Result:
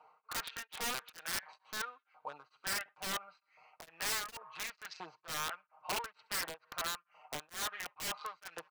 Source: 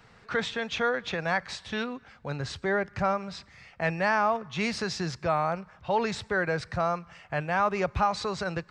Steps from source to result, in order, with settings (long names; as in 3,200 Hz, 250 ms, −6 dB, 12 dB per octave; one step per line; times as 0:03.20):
adaptive Wiener filter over 25 samples
treble cut that deepens with the level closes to 2,600 Hz, closed at −24 dBFS
comb filter 6.5 ms, depth 76%
in parallel at +1 dB: brickwall limiter −23 dBFS, peak gain reduction 11.5 dB
on the sum: downward compressor 2 to 1, threshold −24 dBFS, peak gain reduction 5 dB
auto-filter high-pass saw up 1.4 Hz 830–1,900 Hz
delay with a high-pass on its return 67 ms, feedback 52%, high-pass 1,600 Hz, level −22 dB
wrap-around overflow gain 21.5 dB
tremolo along a rectified sine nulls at 2.2 Hz
level −8 dB